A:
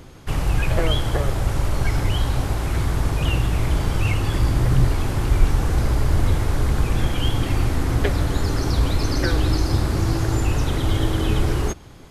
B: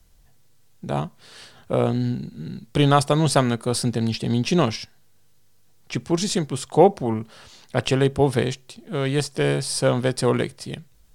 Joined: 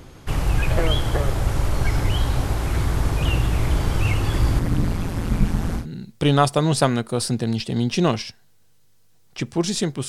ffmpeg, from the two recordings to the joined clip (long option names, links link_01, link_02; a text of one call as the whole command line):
ffmpeg -i cue0.wav -i cue1.wav -filter_complex "[0:a]asettb=1/sr,asplit=3[link_01][link_02][link_03];[link_01]atrim=end=4.594[link_04];[link_02]atrim=start=4.59:end=5.87,asetpts=PTS-STARTPTS,afade=type=in:duration=0.004:curve=qsin,afade=type=out:start_time=1.276:duration=0.004:curve=qsin,tremolo=f=170:d=0.919[link_05];[link_03]atrim=start=5.866[link_06];[link_04][link_05]acrossfade=duration=0.004:curve1=hsin:curve2=qsin[link_07];[link_07][link_06]acrossfade=duration=0.004:curve1=qsin:curve2=hsin,apad=whole_dur=10.08,atrim=end=10.08,atrim=end=5.87,asetpts=PTS-STARTPTS[link_08];[1:a]atrim=start=2.29:end=6.62,asetpts=PTS-STARTPTS[link_09];[link_08][link_09]acrossfade=duration=0.12:curve1=tri:curve2=tri" out.wav